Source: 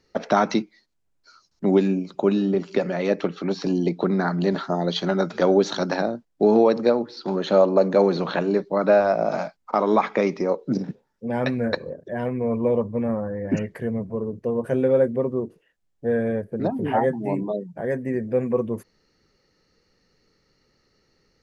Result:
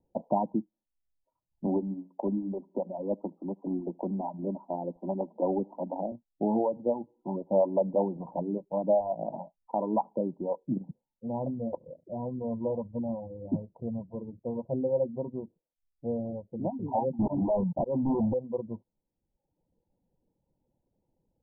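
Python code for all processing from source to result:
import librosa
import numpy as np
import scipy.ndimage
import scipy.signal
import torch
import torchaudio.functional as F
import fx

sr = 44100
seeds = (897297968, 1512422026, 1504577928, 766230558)

y = fx.chain(x, sr, fx.steep_highpass(hz=190.0, slope=48),
    fx.quant_float(bits=2),
    fx.echo_feedback(ms=76, feedback_pct=33, wet_db=-19.5), at=(1.66, 6.12))
y = fx.chain(y, sr, fx.auto_swell(attack_ms=288.0),
    fx.leveller(passes=5), at=(17.19, 18.34))
y = fx.dereverb_blind(y, sr, rt60_s=1.0)
y = scipy.signal.sosfilt(scipy.signal.cheby1(8, 1.0, 980.0, 'lowpass', fs=sr, output='sos'), y)
y = fx.peak_eq(y, sr, hz=420.0, db=-10.5, octaves=0.28)
y = y * librosa.db_to_amplitude(-5.5)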